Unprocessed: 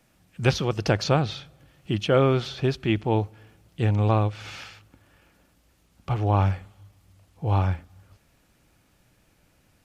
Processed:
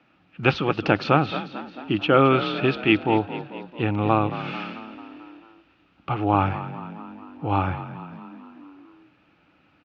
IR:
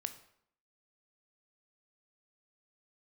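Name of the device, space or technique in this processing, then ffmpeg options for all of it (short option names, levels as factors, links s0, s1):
frequency-shifting delay pedal into a guitar cabinet: -filter_complex "[0:a]asettb=1/sr,asplit=3[s0][s1][s2];[s0]atrim=end=2.304[s3];[s1]atrim=start=2.3:end=3.01,asetpts=PTS-STARTPTS,afade=t=in:d=0.004:c=qsin,afade=t=out:st=0.706:d=0.004:c=qsin,equalizer=f=2500:t=o:w=2.1:g=4.5[s4];[s2]atrim=start=3.006[s5];[s3][s4]acrossfade=d=0.004:c1=hsin:c2=qsin[s6];[s6][s5]acrossfade=d=0.004:c1=qsin:c2=hsin,asplit=7[s7][s8][s9][s10][s11][s12][s13];[s8]adelay=221,afreqshift=38,volume=0.211[s14];[s9]adelay=442,afreqshift=76,volume=0.123[s15];[s10]adelay=663,afreqshift=114,volume=0.0708[s16];[s11]adelay=884,afreqshift=152,volume=0.0412[s17];[s12]adelay=1105,afreqshift=190,volume=0.024[s18];[s13]adelay=1326,afreqshift=228,volume=0.0138[s19];[s7][s14][s15][s16][s17][s18][s19]amix=inputs=7:normalize=0,highpass=100,equalizer=f=110:t=q:w=4:g=-4,equalizer=f=300:t=q:w=4:g=9,equalizer=f=820:t=q:w=4:g=5,equalizer=f=1300:t=q:w=4:g=10,equalizer=f=2600:t=q:w=4:g=8,lowpass=f=3900:w=0.5412,lowpass=f=3900:w=1.3066"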